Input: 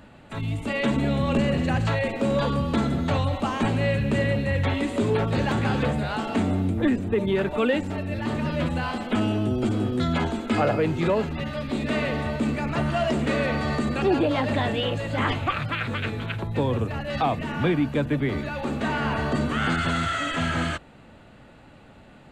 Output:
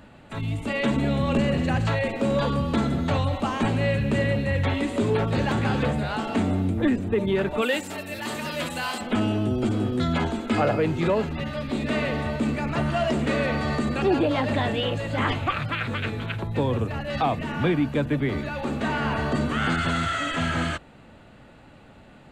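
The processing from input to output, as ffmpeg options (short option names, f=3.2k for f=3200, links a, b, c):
-filter_complex "[0:a]asplit=3[a][b][c];[a]afade=t=out:st=7.61:d=0.02[d];[b]aemphasis=mode=production:type=riaa,afade=t=in:st=7.61:d=0.02,afade=t=out:st=9:d=0.02[e];[c]afade=t=in:st=9:d=0.02[f];[d][e][f]amix=inputs=3:normalize=0"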